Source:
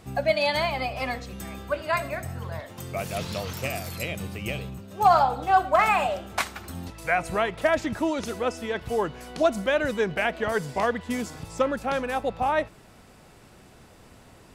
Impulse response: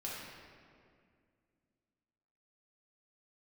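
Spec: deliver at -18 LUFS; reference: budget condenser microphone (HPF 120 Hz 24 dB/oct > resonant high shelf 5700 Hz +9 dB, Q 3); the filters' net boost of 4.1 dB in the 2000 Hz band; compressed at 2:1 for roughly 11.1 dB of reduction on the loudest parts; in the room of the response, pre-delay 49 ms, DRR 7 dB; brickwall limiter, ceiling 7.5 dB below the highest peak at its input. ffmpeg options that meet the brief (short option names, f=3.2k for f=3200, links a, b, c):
-filter_complex "[0:a]equalizer=f=2k:t=o:g=6.5,acompressor=threshold=-34dB:ratio=2,alimiter=limit=-23dB:level=0:latency=1,asplit=2[a][b];[1:a]atrim=start_sample=2205,adelay=49[c];[b][c]afir=irnorm=-1:irlink=0,volume=-8.5dB[d];[a][d]amix=inputs=2:normalize=0,highpass=f=120:w=0.5412,highpass=f=120:w=1.3066,highshelf=f=5.7k:t=q:w=3:g=9,volume=15dB"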